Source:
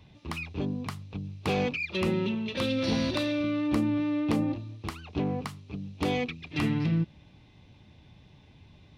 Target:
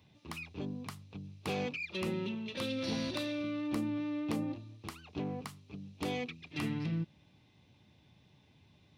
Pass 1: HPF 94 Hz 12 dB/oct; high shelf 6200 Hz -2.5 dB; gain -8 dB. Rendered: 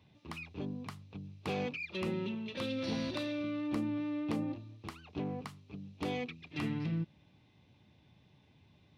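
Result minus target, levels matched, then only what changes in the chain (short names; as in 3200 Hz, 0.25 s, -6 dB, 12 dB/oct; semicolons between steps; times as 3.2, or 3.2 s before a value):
8000 Hz band -5.5 dB
change: high shelf 6200 Hz +7.5 dB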